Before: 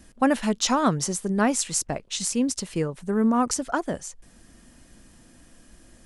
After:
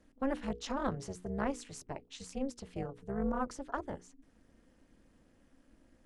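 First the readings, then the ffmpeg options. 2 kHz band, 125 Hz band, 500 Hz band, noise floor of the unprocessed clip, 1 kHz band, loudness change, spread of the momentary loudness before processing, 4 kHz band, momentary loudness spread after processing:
-13.5 dB, -12.0 dB, -11.0 dB, -54 dBFS, -13.0 dB, -14.0 dB, 8 LU, -19.0 dB, 10 LU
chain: -af "aemphasis=mode=reproduction:type=75kf,tremolo=f=270:d=0.974,bandreject=f=60:t=h:w=6,bandreject=f=120:t=h:w=6,bandreject=f=180:t=h:w=6,bandreject=f=240:t=h:w=6,bandreject=f=300:t=h:w=6,bandreject=f=360:t=h:w=6,bandreject=f=420:t=h:w=6,bandreject=f=480:t=h:w=6,volume=-8dB"

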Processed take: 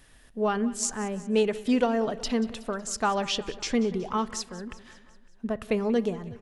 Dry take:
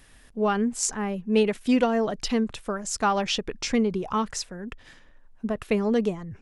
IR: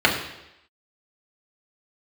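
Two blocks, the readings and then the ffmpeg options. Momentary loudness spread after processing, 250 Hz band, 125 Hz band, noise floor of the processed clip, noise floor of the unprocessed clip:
11 LU, -2.5 dB, -3.0 dB, -55 dBFS, -54 dBFS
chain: -filter_complex "[0:a]aecho=1:1:185|370|555|740|925:0.126|0.073|0.0424|0.0246|0.0142,asplit=2[a][b];[1:a]atrim=start_sample=2205[c];[b][c]afir=irnorm=-1:irlink=0,volume=-35dB[d];[a][d]amix=inputs=2:normalize=0,volume=-2.5dB"

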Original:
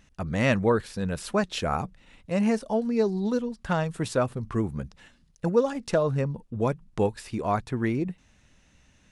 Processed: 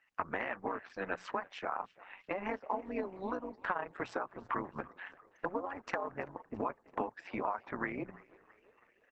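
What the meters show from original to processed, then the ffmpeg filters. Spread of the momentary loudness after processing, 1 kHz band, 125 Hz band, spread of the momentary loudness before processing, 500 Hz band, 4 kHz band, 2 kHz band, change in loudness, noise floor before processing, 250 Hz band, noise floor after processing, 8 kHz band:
7 LU, -5.0 dB, -24.0 dB, 8 LU, -13.5 dB, -16.0 dB, -5.5 dB, -12.0 dB, -62 dBFS, -16.0 dB, -71 dBFS, under -20 dB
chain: -filter_complex "[0:a]acrossover=split=440 7400:gain=0.0708 1 0.112[a][b][c];[a][b][c]amix=inputs=3:normalize=0,tremolo=f=190:d=0.889,acontrast=46,alimiter=limit=-14dB:level=0:latency=1:release=119,bandreject=f=60:t=h:w=6,bandreject=f=120:t=h:w=6,bandreject=f=180:t=h:w=6,acompressor=threshold=-39dB:ratio=16,afftdn=nr=20:nf=-57,equalizer=f=125:t=o:w=1:g=4,equalizer=f=250:t=o:w=1:g=9,equalizer=f=1k:t=o:w=1:g=10,equalizer=f=2k:t=o:w=1:g=8,equalizer=f=4k:t=o:w=1:g=-7,equalizer=f=8k:t=o:w=1:g=-8,asplit=6[d][e][f][g][h][i];[e]adelay=333,afreqshift=44,volume=-21.5dB[j];[f]adelay=666,afreqshift=88,volume=-26.1dB[k];[g]adelay=999,afreqshift=132,volume=-30.7dB[l];[h]adelay=1332,afreqshift=176,volume=-35.2dB[m];[i]adelay=1665,afreqshift=220,volume=-39.8dB[n];[d][j][k][l][m][n]amix=inputs=6:normalize=0" -ar 48000 -c:a libopus -b:a 10k

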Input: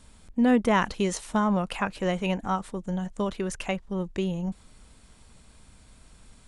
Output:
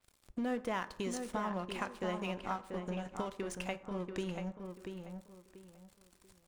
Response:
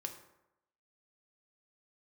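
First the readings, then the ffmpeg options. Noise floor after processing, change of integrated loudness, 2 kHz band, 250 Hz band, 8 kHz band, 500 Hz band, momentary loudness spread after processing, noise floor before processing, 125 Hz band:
-70 dBFS, -12.0 dB, -10.5 dB, -13.0 dB, -10.0 dB, -10.0 dB, 13 LU, -55 dBFS, -12.0 dB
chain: -filter_complex "[0:a]bass=f=250:g=-5,treble=f=4k:g=3,acompressor=threshold=-40dB:ratio=2.5,aeval=exprs='sgn(val(0))*max(abs(val(0))-0.00299,0)':c=same,asplit=2[a][b];[b]adelay=687,lowpass=f=2.5k:p=1,volume=-6dB,asplit=2[c][d];[d]adelay=687,lowpass=f=2.5k:p=1,volume=0.28,asplit=2[e][f];[f]adelay=687,lowpass=f=2.5k:p=1,volume=0.28,asplit=2[g][h];[h]adelay=687,lowpass=f=2.5k:p=1,volume=0.28[i];[a][c][e][g][i]amix=inputs=5:normalize=0,asplit=2[j][k];[1:a]atrim=start_sample=2205[l];[k][l]afir=irnorm=-1:irlink=0,volume=-2.5dB[m];[j][m]amix=inputs=2:normalize=0,adynamicequalizer=threshold=0.00178:dfrequency=4500:dqfactor=0.7:tfrequency=4500:tqfactor=0.7:attack=5:release=100:ratio=0.375:range=2.5:mode=cutabove:tftype=highshelf,volume=-2.5dB"

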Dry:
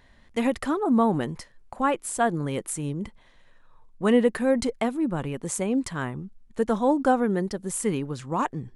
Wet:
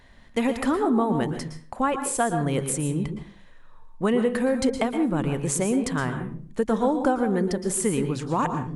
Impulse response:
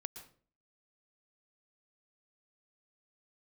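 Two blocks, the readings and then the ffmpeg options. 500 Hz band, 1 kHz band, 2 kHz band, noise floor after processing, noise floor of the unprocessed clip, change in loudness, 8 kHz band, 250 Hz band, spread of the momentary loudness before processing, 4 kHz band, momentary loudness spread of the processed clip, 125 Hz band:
+0.5 dB, 0.0 dB, +1.0 dB, -48 dBFS, -56 dBFS, +1.0 dB, +4.0 dB, +1.0 dB, 12 LU, +2.0 dB, 7 LU, +4.0 dB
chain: -filter_complex "[0:a]acompressor=threshold=-23dB:ratio=5[a];[1:a]atrim=start_sample=2205,asetrate=43659,aresample=44100[b];[a][b]afir=irnorm=-1:irlink=0,volume=7.5dB"

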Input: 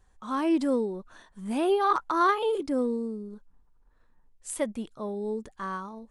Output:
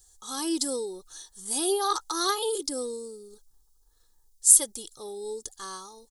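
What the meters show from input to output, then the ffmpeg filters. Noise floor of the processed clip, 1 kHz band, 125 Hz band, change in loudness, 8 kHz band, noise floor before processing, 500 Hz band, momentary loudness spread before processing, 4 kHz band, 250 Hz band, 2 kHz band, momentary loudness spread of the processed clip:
-64 dBFS, -5.0 dB, n/a, +4.0 dB, +21.5 dB, -63 dBFS, -3.5 dB, 15 LU, +10.5 dB, -7.0 dB, -5.5 dB, 22 LU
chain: -af "aecho=1:1:2.4:0.69,aexciter=amount=12.7:drive=7.3:freq=3.7k,volume=-7dB"

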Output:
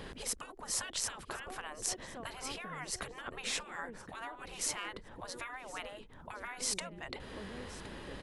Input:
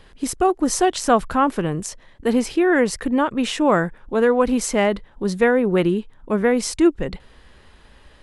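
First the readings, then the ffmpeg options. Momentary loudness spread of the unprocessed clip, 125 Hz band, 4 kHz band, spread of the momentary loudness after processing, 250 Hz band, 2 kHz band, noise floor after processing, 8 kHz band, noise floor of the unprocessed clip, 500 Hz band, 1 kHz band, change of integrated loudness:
9 LU, -22.0 dB, -9.0 dB, 10 LU, -31.0 dB, -16.0 dB, -53 dBFS, -8.0 dB, -51 dBFS, -28.5 dB, -21.5 dB, -20.0 dB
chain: -filter_complex "[0:a]equalizer=f=280:t=o:w=2.5:g=5.5,acompressor=threshold=-26dB:ratio=10,asplit=2[a][b];[b]aecho=0:1:1067|2134:0.1|0.026[c];[a][c]amix=inputs=2:normalize=0,afftfilt=real='re*lt(hypot(re,im),0.0447)':imag='im*lt(hypot(re,im),0.0447)':win_size=1024:overlap=0.75,volume=3dB"

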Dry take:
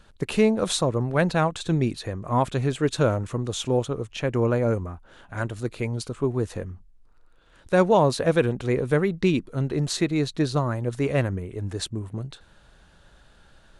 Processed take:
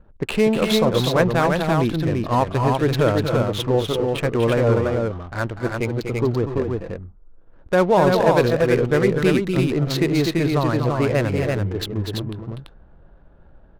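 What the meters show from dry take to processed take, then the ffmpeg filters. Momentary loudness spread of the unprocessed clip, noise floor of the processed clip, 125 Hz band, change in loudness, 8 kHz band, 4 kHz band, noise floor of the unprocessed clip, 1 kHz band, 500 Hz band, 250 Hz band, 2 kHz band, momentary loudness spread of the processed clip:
11 LU, -49 dBFS, +4.0 dB, +4.5 dB, -1.5 dB, +5.0 dB, -56 dBFS, +5.5 dB, +5.5 dB, +4.5 dB, +5.5 dB, 9 LU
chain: -filter_complex "[0:a]lowpass=4.6k,equalizer=f=140:w=0.61:g=-3,asplit=2[a][b];[b]alimiter=limit=-18.5dB:level=0:latency=1:release=21,volume=-0.5dB[c];[a][c]amix=inputs=2:normalize=0,adynamicsmooth=sensitivity=5:basefreq=550,aecho=1:1:244|250|337:0.398|0.282|0.668"

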